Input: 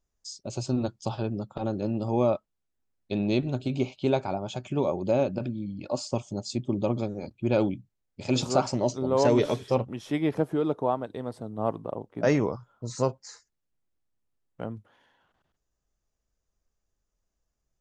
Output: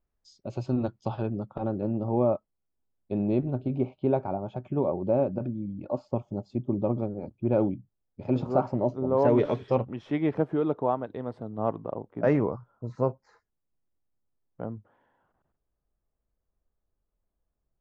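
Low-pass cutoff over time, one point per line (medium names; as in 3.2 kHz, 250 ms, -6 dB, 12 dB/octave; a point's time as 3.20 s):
1.20 s 2.2 kHz
2.18 s 1.1 kHz
9.07 s 1.1 kHz
9.59 s 2.4 kHz
11.70 s 2.4 kHz
12.91 s 1.2 kHz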